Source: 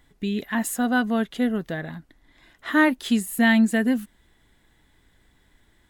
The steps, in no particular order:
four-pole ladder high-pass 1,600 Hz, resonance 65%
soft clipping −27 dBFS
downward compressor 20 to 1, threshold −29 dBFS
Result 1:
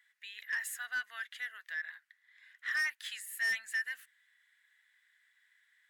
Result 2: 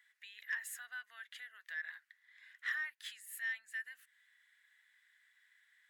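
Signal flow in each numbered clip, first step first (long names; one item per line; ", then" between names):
four-pole ladder high-pass, then soft clipping, then downward compressor
downward compressor, then four-pole ladder high-pass, then soft clipping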